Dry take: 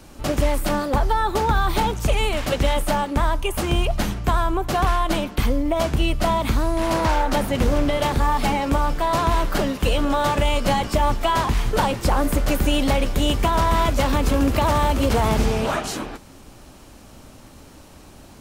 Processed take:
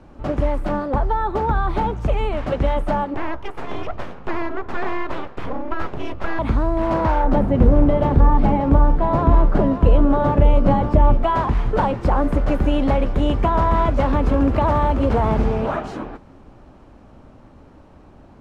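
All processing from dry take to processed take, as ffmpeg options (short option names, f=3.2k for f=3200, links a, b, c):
-filter_complex "[0:a]asettb=1/sr,asplit=3[a][b][c];[a]atrim=end=3.144[d];[b]atrim=start=3.14:end=6.39,asetpts=PTS-STARTPTS,afade=t=in:d=0.004:c=qsin,afade=t=out:st=3.246:d=0.004:c=qsin,bass=f=250:g=-9,treble=f=4k:g=-5,bandreject=f=60:t=h:w=6,bandreject=f=120:t=h:w=6,bandreject=f=180:t=h:w=6,bandreject=f=240:t=h:w=6,bandreject=f=300:t=h:w=6,bandreject=f=360:t=h:w=6,bandreject=f=420:t=h:w=6,bandreject=f=480:t=h:w=6,bandreject=f=540:t=h:w=6,aeval=exprs='abs(val(0))':c=same[e];[c]atrim=start=6.386[f];[d][e]acrossfade=d=0.004:c1=hsin:c2=qsin[g];[g][f]acrossfade=d=0.004:c1=qsin:c2=hsin,asettb=1/sr,asplit=3[h][i][j];[h]atrim=end=7.244[k];[i]atrim=start=7.24:end=11.24,asetpts=PTS-STARTPTS,afade=t=in:d=0.004:c=qsin,afade=t=out:st=3.996:d=0.004:c=qsin,tiltshelf=f=700:g=5.5,aecho=1:1:581:0.299,atrim=end_sample=176400[l];[j]atrim=start=11.236[m];[k][l]acrossfade=d=0.004:c1=hsin:c2=qsin[n];[n][m]acrossfade=d=0.004:c1=qsin:c2=hsin,dynaudnorm=f=410:g=17:m=4dB,lowpass=1.2k,aemphasis=mode=production:type=75kf"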